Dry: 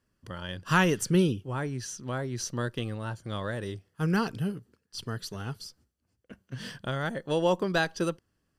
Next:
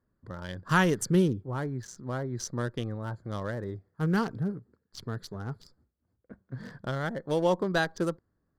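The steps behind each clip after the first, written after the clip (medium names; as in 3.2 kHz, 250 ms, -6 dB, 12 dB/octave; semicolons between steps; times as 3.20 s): local Wiener filter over 15 samples; peaking EQ 2.6 kHz -8 dB 0.22 oct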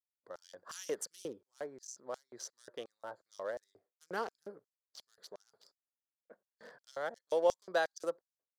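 LFO high-pass square 2.8 Hz 550–5900 Hz; expander -59 dBFS; trim -8 dB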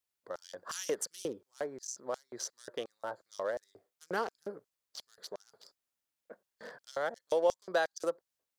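compression 1.5:1, threshold -42 dBFS, peak gain reduction 7 dB; trim +7 dB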